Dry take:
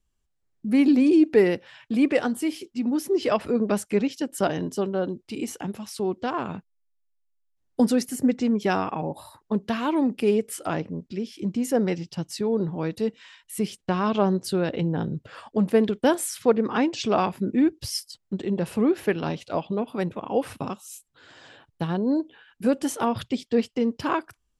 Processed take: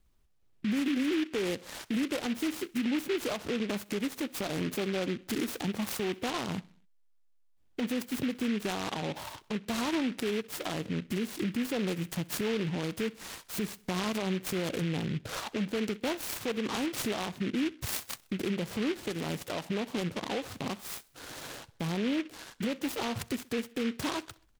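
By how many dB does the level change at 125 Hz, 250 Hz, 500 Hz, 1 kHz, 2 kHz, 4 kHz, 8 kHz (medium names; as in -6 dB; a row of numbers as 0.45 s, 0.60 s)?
-5.5 dB, -8.5 dB, -10.0 dB, -9.5 dB, -3.0 dB, 0.0 dB, -3.5 dB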